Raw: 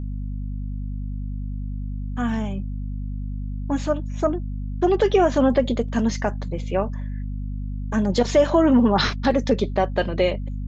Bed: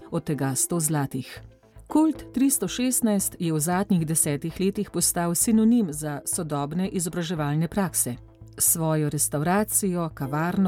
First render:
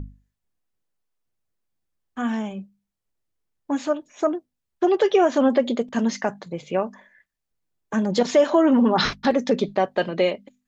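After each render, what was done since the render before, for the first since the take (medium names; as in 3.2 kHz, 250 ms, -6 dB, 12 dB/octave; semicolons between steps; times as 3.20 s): hum notches 50/100/150/200/250 Hz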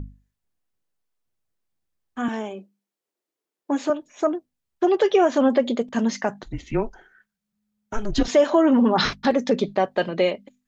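2.28–3.90 s: resonant high-pass 360 Hz, resonance Q 2; 6.42–8.28 s: frequency shift -210 Hz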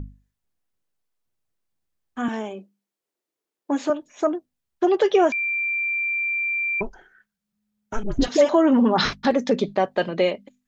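5.32–6.81 s: bleep 2.36 kHz -21.5 dBFS; 8.03–8.49 s: phase dispersion highs, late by 69 ms, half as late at 830 Hz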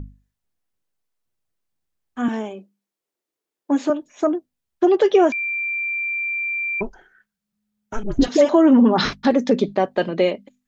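dynamic bell 280 Hz, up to +5 dB, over -32 dBFS, Q 0.96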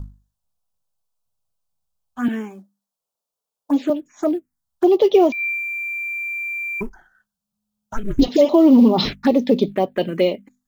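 in parallel at -11 dB: short-mantissa float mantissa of 2-bit; on the sum: touch-sensitive phaser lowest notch 330 Hz, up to 1.6 kHz, full sweep at -12 dBFS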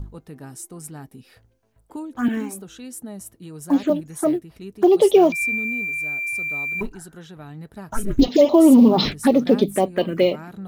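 add bed -13 dB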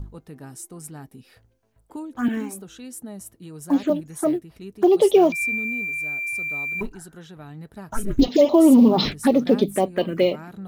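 trim -1.5 dB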